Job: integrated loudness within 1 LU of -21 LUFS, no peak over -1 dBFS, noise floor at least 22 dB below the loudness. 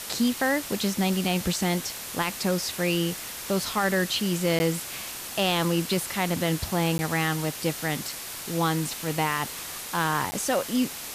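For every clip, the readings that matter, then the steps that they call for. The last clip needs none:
dropouts 3; longest dropout 10 ms; noise floor -37 dBFS; noise floor target -49 dBFS; loudness -26.5 LUFS; peak -13.0 dBFS; loudness target -21.0 LUFS
-> interpolate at 4.59/6.98/10.31, 10 ms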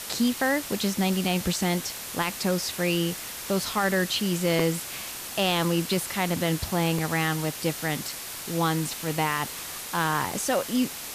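dropouts 0; noise floor -37 dBFS; noise floor target -49 dBFS
-> denoiser 12 dB, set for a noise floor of -37 dBFS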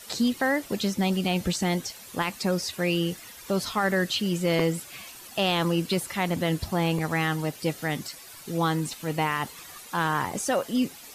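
noise floor -46 dBFS; noise floor target -49 dBFS
-> denoiser 6 dB, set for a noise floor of -46 dBFS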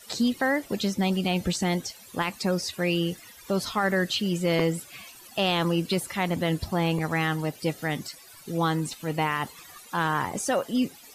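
noise floor -49 dBFS; loudness -27.0 LUFS; peak -11.5 dBFS; loudness target -21.0 LUFS
-> gain +6 dB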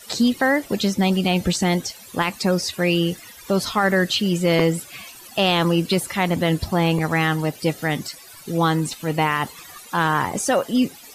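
loudness -21.0 LUFS; peak -5.5 dBFS; noise floor -43 dBFS

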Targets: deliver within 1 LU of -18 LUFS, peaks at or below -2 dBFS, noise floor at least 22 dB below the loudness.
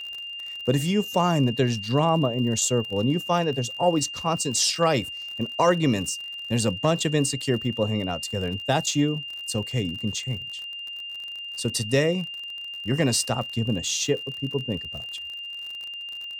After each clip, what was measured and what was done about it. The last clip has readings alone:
ticks 49/s; steady tone 2800 Hz; tone level -33 dBFS; loudness -25.5 LUFS; peak -9.0 dBFS; loudness target -18.0 LUFS
-> de-click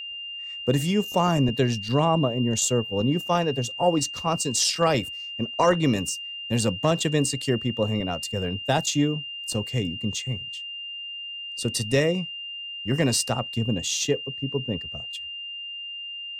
ticks 0.30/s; steady tone 2800 Hz; tone level -33 dBFS
-> notch 2800 Hz, Q 30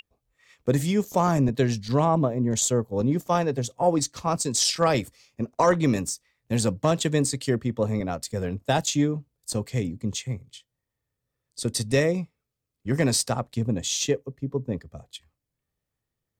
steady tone none; loudness -25.0 LUFS; peak -9.5 dBFS; loudness target -18.0 LUFS
-> gain +7 dB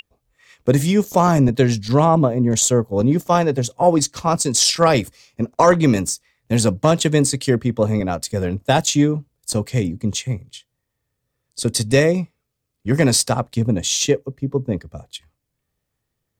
loudness -18.0 LUFS; peak -2.5 dBFS; noise floor -77 dBFS

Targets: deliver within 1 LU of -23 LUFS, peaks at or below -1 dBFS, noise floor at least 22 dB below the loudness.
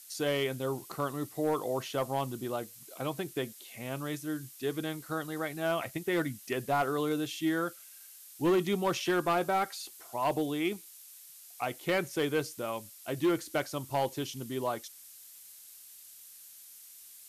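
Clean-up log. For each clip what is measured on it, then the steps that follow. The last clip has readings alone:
clipped 0.7%; flat tops at -22.0 dBFS; noise floor -52 dBFS; noise floor target -55 dBFS; loudness -33.0 LUFS; peak -22.0 dBFS; loudness target -23.0 LUFS
-> clip repair -22 dBFS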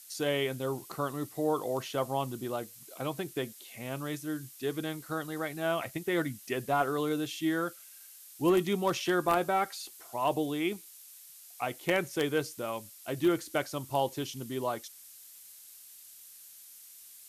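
clipped 0.0%; noise floor -52 dBFS; noise floor target -55 dBFS
-> noise print and reduce 6 dB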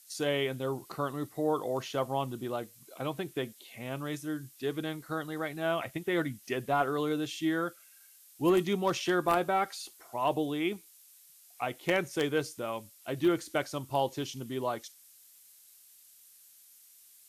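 noise floor -58 dBFS; loudness -32.5 LUFS; peak -13.0 dBFS; loudness target -23.0 LUFS
-> gain +9.5 dB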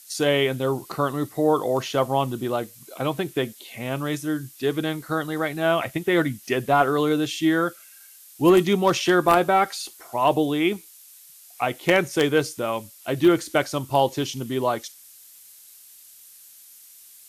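loudness -23.0 LUFS; peak -3.5 dBFS; noise floor -49 dBFS

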